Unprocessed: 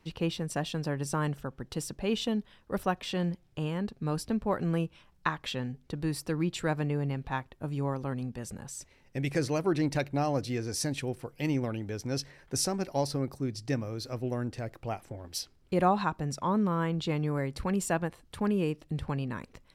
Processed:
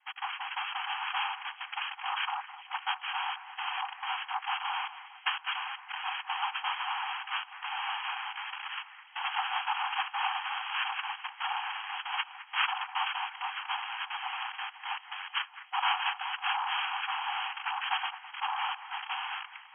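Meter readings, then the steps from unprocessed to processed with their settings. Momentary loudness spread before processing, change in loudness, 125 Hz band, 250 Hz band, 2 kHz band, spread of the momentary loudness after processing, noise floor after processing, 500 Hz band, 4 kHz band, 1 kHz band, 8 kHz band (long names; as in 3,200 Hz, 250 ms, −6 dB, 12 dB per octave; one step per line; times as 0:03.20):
9 LU, −1.5 dB, below −40 dB, below −40 dB, +7.5 dB, 6 LU, −52 dBFS, below −25 dB, +7.0 dB, +4.0 dB, below −40 dB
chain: loose part that buzzes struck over −45 dBFS, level −23 dBFS
spectral tilt +2 dB per octave
automatic gain control gain up to 3.5 dB
cochlear-implant simulation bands 2
linear-phase brick-wall band-pass 740–3,300 Hz
on a send: delay that swaps between a low-pass and a high-pass 208 ms, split 2,400 Hz, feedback 67%, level −13.5 dB
on the sum: dynamic equaliser 2,000 Hz, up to −7 dB, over −47 dBFS, Q 5.7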